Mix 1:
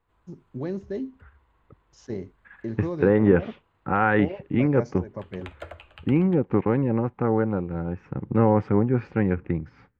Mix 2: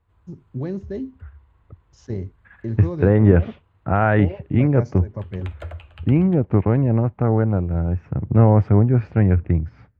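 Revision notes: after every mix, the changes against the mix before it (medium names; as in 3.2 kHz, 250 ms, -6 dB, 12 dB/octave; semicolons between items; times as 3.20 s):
second voice: remove Butterworth band-stop 650 Hz, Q 4.1; master: add peaking EQ 84 Hz +15 dB 1.4 oct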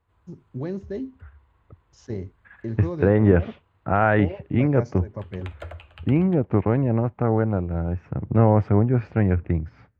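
master: add bass shelf 190 Hz -6.5 dB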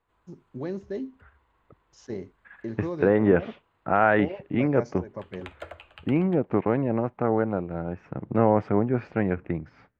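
master: add peaking EQ 84 Hz -15 dB 1.4 oct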